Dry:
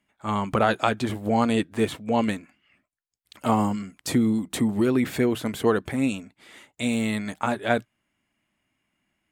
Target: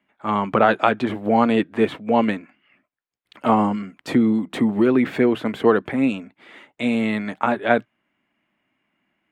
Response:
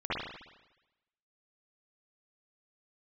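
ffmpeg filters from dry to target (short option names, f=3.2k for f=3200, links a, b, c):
-filter_complex "[0:a]acrossover=split=160 3300:gain=0.224 1 0.112[a][b][c];[a][b][c]amix=inputs=3:normalize=0,volume=5.5dB"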